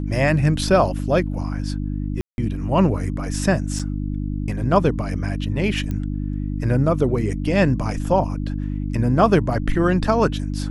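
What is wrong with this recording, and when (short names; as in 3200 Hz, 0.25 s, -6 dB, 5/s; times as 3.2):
hum 50 Hz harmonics 6 -25 dBFS
2.21–2.38 gap 0.171 s
3.79–3.8 gap 6.3 ms
5.91 pop -16 dBFS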